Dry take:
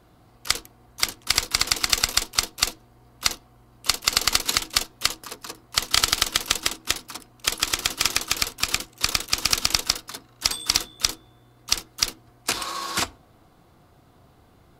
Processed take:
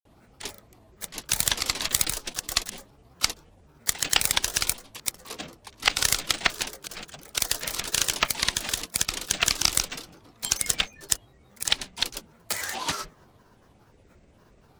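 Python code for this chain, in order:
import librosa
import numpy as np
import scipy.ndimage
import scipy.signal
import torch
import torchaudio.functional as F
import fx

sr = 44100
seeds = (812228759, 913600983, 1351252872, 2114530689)

y = fx.notch(x, sr, hz=1500.0, q=7.0)
y = fx.granulator(y, sr, seeds[0], grain_ms=122.0, per_s=17.0, spray_ms=100.0, spread_st=12)
y = fx.transformer_sat(y, sr, knee_hz=990.0)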